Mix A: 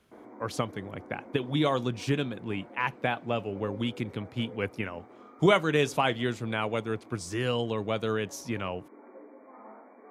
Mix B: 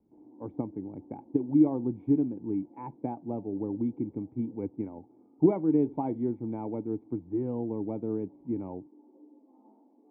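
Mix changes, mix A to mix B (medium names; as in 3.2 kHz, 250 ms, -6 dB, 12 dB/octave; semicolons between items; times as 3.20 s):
speech +8.5 dB; master: add cascade formant filter u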